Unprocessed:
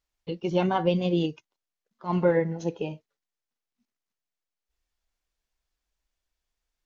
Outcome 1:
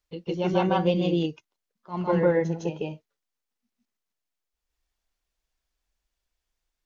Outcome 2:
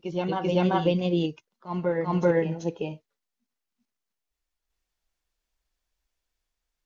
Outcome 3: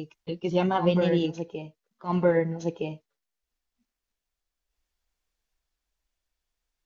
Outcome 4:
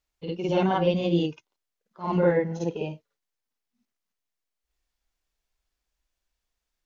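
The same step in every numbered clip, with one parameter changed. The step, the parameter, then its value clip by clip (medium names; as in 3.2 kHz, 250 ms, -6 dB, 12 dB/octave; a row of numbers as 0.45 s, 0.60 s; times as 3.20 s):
reverse echo, time: 157 ms, 388 ms, 1265 ms, 53 ms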